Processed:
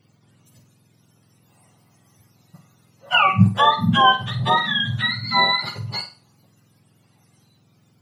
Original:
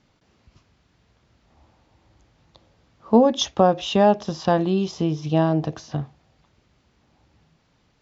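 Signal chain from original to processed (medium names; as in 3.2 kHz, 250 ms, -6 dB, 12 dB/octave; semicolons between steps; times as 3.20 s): spectrum inverted on a logarithmic axis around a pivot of 800 Hz; flutter echo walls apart 8.1 m, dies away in 0.32 s; trim +3 dB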